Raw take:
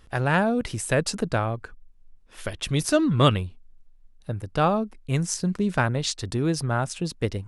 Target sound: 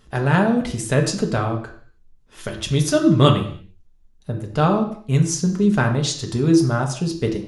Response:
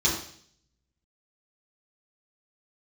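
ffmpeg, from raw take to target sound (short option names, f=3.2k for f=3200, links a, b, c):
-filter_complex "[0:a]asplit=2[a][b];[1:a]atrim=start_sample=2205,afade=t=out:st=0.38:d=0.01,atrim=end_sample=17199[c];[b][c]afir=irnorm=-1:irlink=0,volume=-14.5dB[d];[a][d]amix=inputs=2:normalize=0,volume=1.5dB"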